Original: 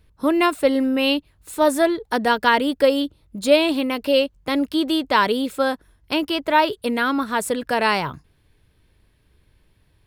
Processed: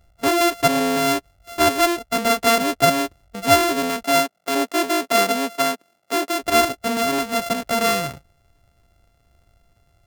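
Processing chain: sorted samples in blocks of 64 samples; 4.03–6.42 s: high-pass 200 Hz 24 dB/octave

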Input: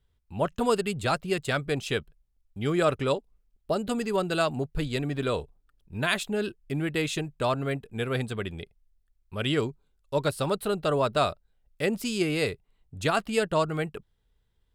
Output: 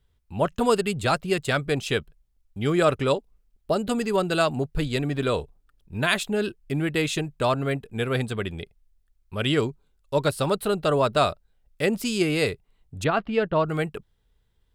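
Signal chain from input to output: 13.04–13.66 s: distance through air 330 m; trim +3.5 dB

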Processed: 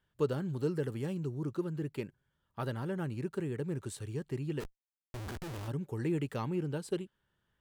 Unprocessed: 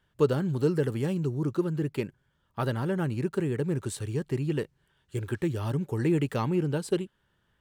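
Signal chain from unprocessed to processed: 4.60–5.68 s: Schmitt trigger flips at -42 dBFS; trim -7.5 dB

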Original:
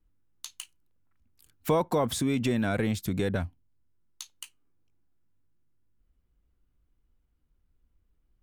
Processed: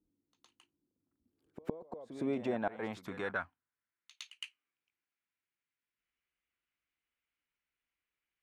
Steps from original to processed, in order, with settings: band-pass sweep 300 Hz -> 2.3 kHz, 1.17–4.25 s; inverted gate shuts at -26 dBFS, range -26 dB; pre-echo 112 ms -13 dB; trim +5.5 dB

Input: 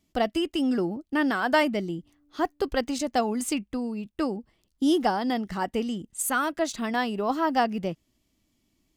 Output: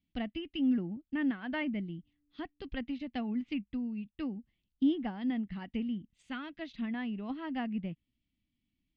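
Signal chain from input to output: low-pass 3.6 kHz 24 dB/octave; high-order bell 740 Hz -14.5 dB 2.4 oct; low-pass that closes with the level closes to 1.9 kHz, closed at -28 dBFS; upward expansion 1.5:1, over -42 dBFS

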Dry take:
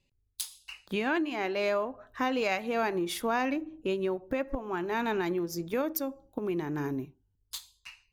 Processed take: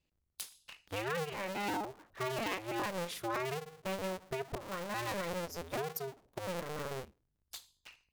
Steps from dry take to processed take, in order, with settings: cycle switcher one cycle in 2, inverted; trim -7.5 dB

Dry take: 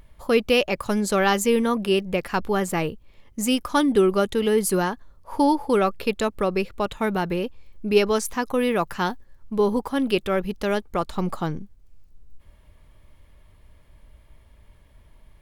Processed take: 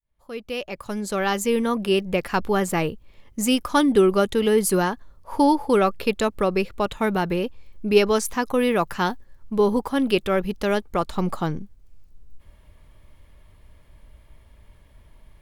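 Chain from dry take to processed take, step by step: fade-in on the opening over 2.19 s; trim +1.5 dB

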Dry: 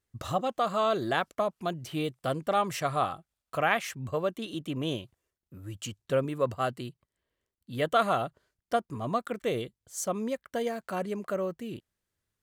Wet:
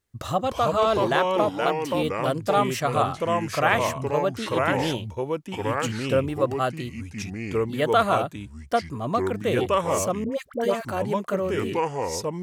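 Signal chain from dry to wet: ever faster or slower copies 263 ms, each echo -3 st, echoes 2; 1.49–2.02 s: high-pass 370 Hz -> 150 Hz 6 dB/octave; 10.24–10.85 s: phase dispersion highs, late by 78 ms, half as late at 780 Hz; trim +4.5 dB

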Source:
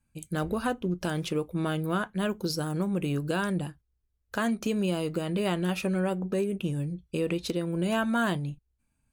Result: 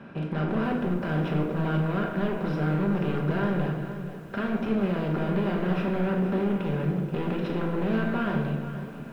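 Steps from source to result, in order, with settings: spectral levelling over time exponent 0.4; high-pass 93 Hz 12 dB/octave; bass shelf 130 Hz +3.5 dB; band-stop 4.5 kHz, Q 5.4; hard clipper -23 dBFS, distortion -9 dB; distance through air 410 m; simulated room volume 680 m³, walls mixed, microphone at 1.2 m; bit-crushed delay 479 ms, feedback 35%, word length 8-bit, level -12 dB; trim -3 dB

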